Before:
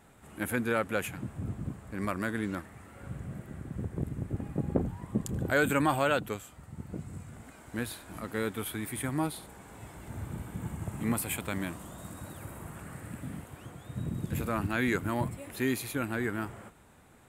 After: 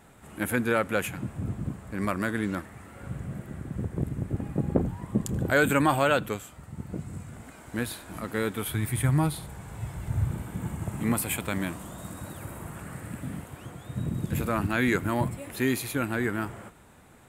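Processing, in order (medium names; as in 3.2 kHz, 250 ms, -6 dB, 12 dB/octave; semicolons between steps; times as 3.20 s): 8.68–10.31 s: resonant low shelf 180 Hz +8 dB, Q 1.5; on a send: reverberation RT60 1.1 s, pre-delay 3 ms, DRR 19.5 dB; on the sum: trim +4 dB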